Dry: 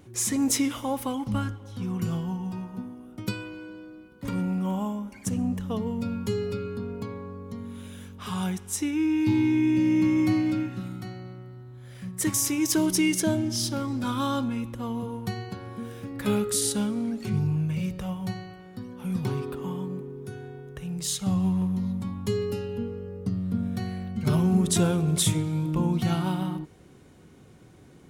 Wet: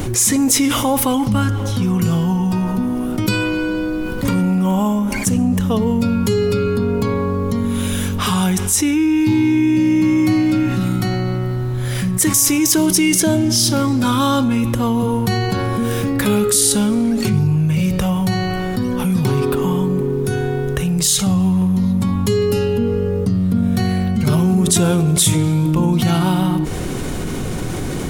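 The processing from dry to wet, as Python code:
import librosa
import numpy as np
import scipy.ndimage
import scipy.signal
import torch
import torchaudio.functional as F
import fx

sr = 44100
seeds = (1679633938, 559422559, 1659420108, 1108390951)

y = fx.high_shelf(x, sr, hz=5500.0, db=5.5)
y = fx.dmg_noise_colour(y, sr, seeds[0], colour='brown', level_db=-56.0)
y = fx.env_flatten(y, sr, amount_pct=70)
y = y * librosa.db_to_amplitude(5.0)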